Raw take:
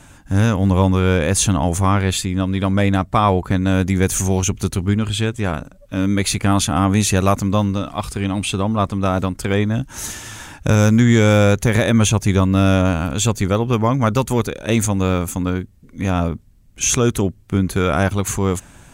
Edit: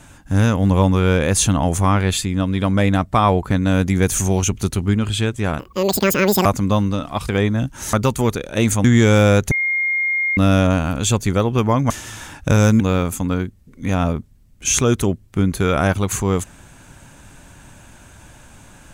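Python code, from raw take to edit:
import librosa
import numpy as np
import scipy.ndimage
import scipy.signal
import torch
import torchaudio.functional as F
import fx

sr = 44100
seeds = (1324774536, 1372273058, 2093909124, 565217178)

y = fx.edit(x, sr, fx.speed_span(start_s=5.59, length_s=1.69, speed=1.96),
    fx.cut(start_s=8.11, length_s=1.33),
    fx.swap(start_s=10.09, length_s=0.9, other_s=14.05, other_length_s=0.91),
    fx.bleep(start_s=11.66, length_s=0.86, hz=2130.0, db=-16.5), tone=tone)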